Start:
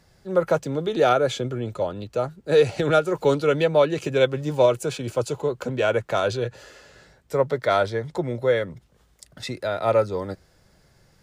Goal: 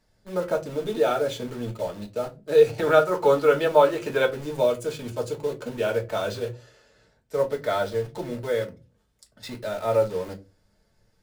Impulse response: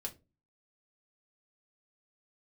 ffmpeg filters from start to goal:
-filter_complex "[0:a]asettb=1/sr,asplit=3[s0][s1][s2];[s0]atrim=end=2.784[s3];[s1]atrim=start=2.78:end=4.26,asetpts=PTS-STARTPTS,afade=t=in:d=0.004:c=qsin,afade=t=out:st=1.476:d=0.004:c=qsin,equalizer=f=1100:w=0.93:g=11.5[s4];[s2]atrim=start=4.256[s5];[s3][s4]acrossfade=d=0.004:c1=hsin:c2=qsin[s6];[s6][s5]acrossfade=d=0.004:c1=qsin:c2=hsin,asplit=2[s7][s8];[s8]acrusher=bits=4:mix=0:aa=0.000001,volume=0.631[s9];[s7][s9]amix=inputs=2:normalize=0[s10];[1:a]atrim=start_sample=2205[s11];[s10][s11]afir=irnorm=-1:irlink=0,volume=0.398"

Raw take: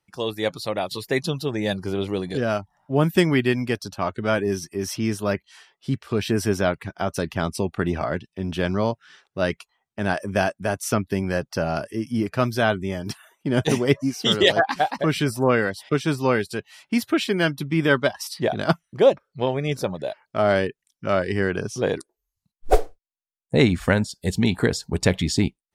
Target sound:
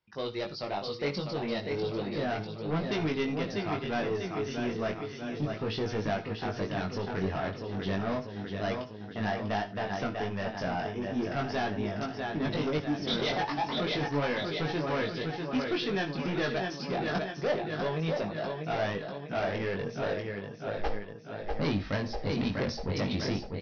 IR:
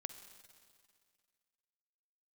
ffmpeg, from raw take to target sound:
-filter_complex "[0:a]aecho=1:1:703|1406|2109|2812|3515|4218|4921:0.422|0.232|0.128|0.0702|0.0386|0.0212|0.0117,aresample=11025,asoftclip=type=tanh:threshold=0.0944,aresample=44100[s0];[1:a]atrim=start_sample=2205,atrim=end_sample=3969,asetrate=36162,aresample=44100[s1];[s0][s1]afir=irnorm=-1:irlink=0,asetrate=48069,aresample=44100,flanger=delay=19:depth=2.4:speed=0.33"

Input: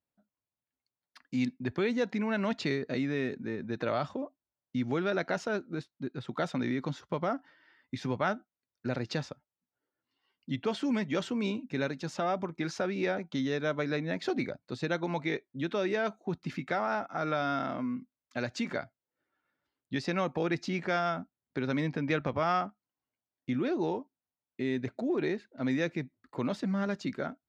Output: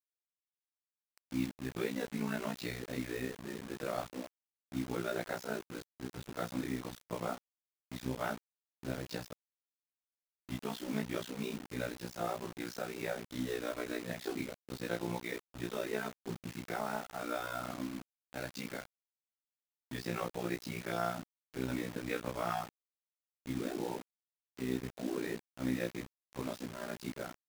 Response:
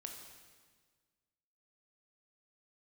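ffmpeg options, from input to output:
-af "afftfilt=real='re':imag='-im':win_size=2048:overlap=0.75,tremolo=f=61:d=0.889,acrusher=bits=7:mix=0:aa=0.000001,volume=1.12"

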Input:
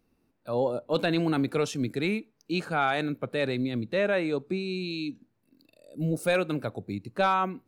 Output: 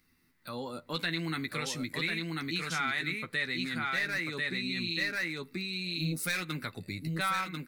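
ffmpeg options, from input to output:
-filter_complex "[0:a]firequalizer=gain_entry='entry(160,0);entry(610,-12);entry(1100,3);entry(1700,5);entry(10000,-1)':delay=0.05:min_phase=1,asettb=1/sr,asplit=3[s0][s1][s2];[s0]atrim=end=3.824[s3];[s1]atrim=start=3.82:end=6.56,asetpts=PTS-STARTPTS,afade=t=in:d=0.004:c=qsin,afade=t=out:st=2.736:d=0.004:c=qsin,asoftclip=type=hard:threshold=0.075[s4];[s2]atrim=start=6.556[s5];[s3][s4]acrossfade=d=0.004:c1=hsin:c2=qsin[s6];[s6][s5]acrossfade=d=0.004:c1=qsin:c2=hsin,equalizer=f=2000:w=5.3:g=14,asplit=2[s7][s8];[s8]adelay=12,volume=0.447[s9];[s7][s9]amix=inputs=2:normalize=0,aecho=1:1:1042:0.708,dynaudnorm=f=170:g=7:m=3.76,aexciter=amount=2.7:drive=3.3:freq=3700,acompressor=threshold=0.00794:ratio=2,volume=0.841"

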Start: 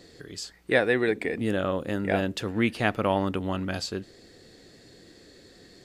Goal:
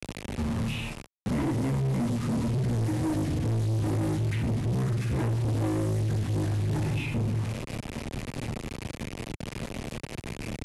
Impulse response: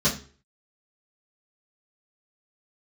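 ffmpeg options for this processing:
-filter_complex "[1:a]atrim=start_sample=2205,afade=t=out:st=0.28:d=0.01,atrim=end_sample=12789[s0];[0:a][s0]afir=irnorm=-1:irlink=0,asplit=2[s1][s2];[s2]aeval=exprs='0.299*(abs(mod(val(0)/0.299+3,4)-2)-1)':c=same,volume=0.355[s3];[s1][s3]amix=inputs=2:normalize=0,equalizer=f=125:t=o:w=1:g=-5,equalizer=f=1000:t=o:w=1:g=-6,equalizer=f=2000:t=o:w=1:g=-10,equalizer=f=8000:t=o:w=1:g=-7,acrusher=bits=4:mix=0:aa=0.000001,acrossover=split=160|2500[s4][s5][s6];[s4]acompressor=threshold=0.0316:ratio=4[s7];[s5]acompressor=threshold=0.0891:ratio=4[s8];[s6]acompressor=threshold=0.01:ratio=4[s9];[s7][s8][s9]amix=inputs=3:normalize=0,asoftclip=type=tanh:threshold=0.0596,areverse,acompressor=mode=upward:threshold=0.02:ratio=2.5,areverse,equalizer=f=2600:w=6.2:g=-2.5,asetrate=24211,aresample=44100"

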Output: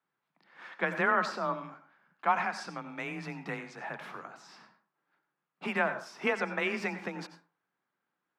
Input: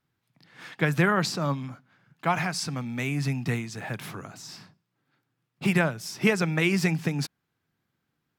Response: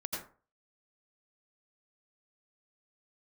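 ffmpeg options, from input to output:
-filter_complex "[0:a]afreqshift=26,bandpass=f=1000:t=q:w=0.93:csg=0,asplit=2[s0][s1];[1:a]atrim=start_sample=2205,lowshelf=f=290:g=-11.5[s2];[s1][s2]afir=irnorm=-1:irlink=0,volume=0.398[s3];[s0][s3]amix=inputs=2:normalize=0,volume=0.794"

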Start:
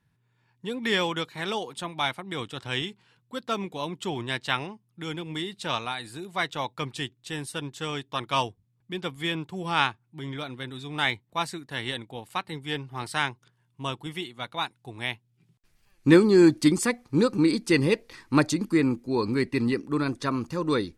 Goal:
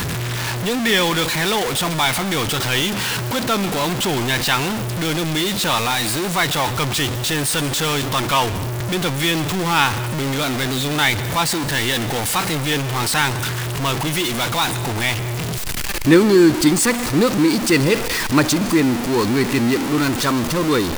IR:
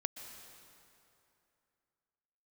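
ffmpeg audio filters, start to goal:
-filter_complex "[0:a]aeval=exprs='val(0)+0.5*0.0944*sgn(val(0))':c=same,asplit=2[s0][s1];[s1]tiltshelf=f=970:g=-3[s2];[1:a]atrim=start_sample=2205,afade=t=out:st=0.32:d=0.01,atrim=end_sample=14553[s3];[s2][s3]afir=irnorm=-1:irlink=0,volume=0.841[s4];[s0][s4]amix=inputs=2:normalize=0,volume=0.891"

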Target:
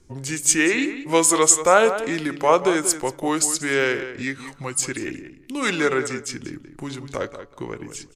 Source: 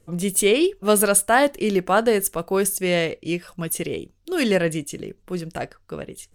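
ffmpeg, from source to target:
-filter_complex "[0:a]bandreject=f=183.3:t=h:w=4,bandreject=f=366.6:t=h:w=4,bandreject=f=549.9:t=h:w=4,bandreject=f=733.2:t=h:w=4,bandreject=f=916.5:t=h:w=4,bandreject=f=1099.8:t=h:w=4,bandreject=f=1283.1:t=h:w=4,bandreject=f=1466.4:t=h:w=4,bandreject=f=1649.7:t=h:w=4,acrossover=split=460[s0][s1];[s0]acompressor=threshold=0.0141:ratio=12[s2];[s2][s1]amix=inputs=2:normalize=0,asetrate=34310,aresample=44100,asplit=2[s3][s4];[s4]adelay=185,lowpass=f=3300:p=1,volume=0.282,asplit=2[s5][s6];[s6]adelay=185,lowpass=f=3300:p=1,volume=0.18[s7];[s3][s5][s7]amix=inputs=3:normalize=0,volume=1.41"

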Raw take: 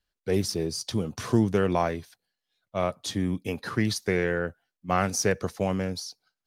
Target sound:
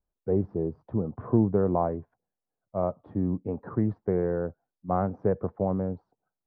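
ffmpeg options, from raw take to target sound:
-af "lowpass=f=1000:w=0.5412,lowpass=f=1000:w=1.3066"

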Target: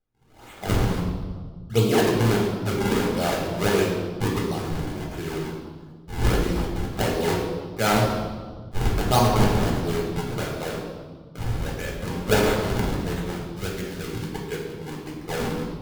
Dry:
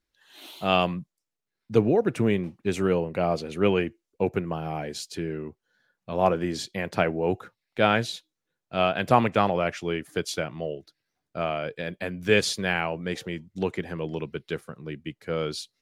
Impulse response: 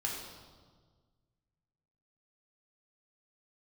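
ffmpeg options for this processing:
-filter_complex "[0:a]acrusher=samples=41:mix=1:aa=0.000001:lfo=1:lforange=65.6:lforate=1.5,asettb=1/sr,asplit=3[s0][s1][s2];[s0]atrim=end=13.514[s3];[s1]atrim=start=13.51:end=14.29,asetpts=PTS-STARTPTS,afade=t=in:d=0.004:c=qsin,afade=t=out:st=0.776:d=0.004:c=qsin,equalizer=f=720:t=o:w=1.8:g=-8[s4];[s2]atrim=start=14.286[s5];[s3][s4]acrossfade=d=0.004:c1=hsin:c2=qsin[s6];[s6][s5]acrossfade=d=0.004:c1=qsin:c2=hsin[s7];[1:a]atrim=start_sample=2205[s8];[s7][s8]afir=irnorm=-1:irlink=0,volume=0.841"

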